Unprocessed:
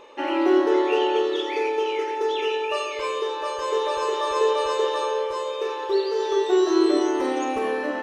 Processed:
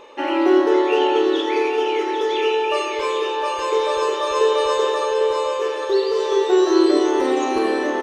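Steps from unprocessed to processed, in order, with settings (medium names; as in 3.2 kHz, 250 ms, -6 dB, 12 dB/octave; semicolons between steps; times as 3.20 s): feedback delay 802 ms, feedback 42%, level -7.5 dB; trim +3.5 dB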